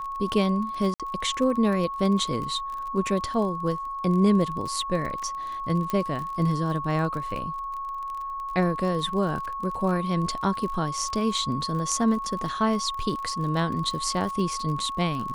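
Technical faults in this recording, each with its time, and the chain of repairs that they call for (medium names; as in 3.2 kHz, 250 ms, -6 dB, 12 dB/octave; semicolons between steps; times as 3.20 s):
crackle 33 per s -32 dBFS
whine 1.1 kHz -30 dBFS
0.94–1.00 s: dropout 57 ms
5.90 s: pop -15 dBFS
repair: de-click; band-stop 1.1 kHz, Q 30; interpolate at 0.94 s, 57 ms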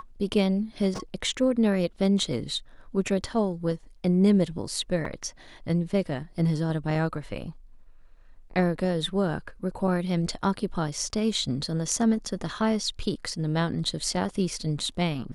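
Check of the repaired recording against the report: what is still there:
nothing left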